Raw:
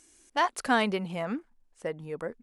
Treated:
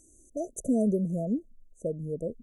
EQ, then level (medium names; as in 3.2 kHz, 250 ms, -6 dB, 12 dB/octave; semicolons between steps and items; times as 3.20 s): brick-wall FIR band-stop 680–5900 Hz; bass shelf 200 Hz +11.5 dB; 0.0 dB